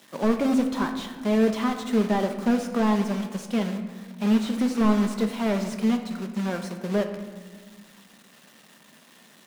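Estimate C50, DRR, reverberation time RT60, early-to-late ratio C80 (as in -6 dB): 8.0 dB, 5.0 dB, 1.6 s, 10.0 dB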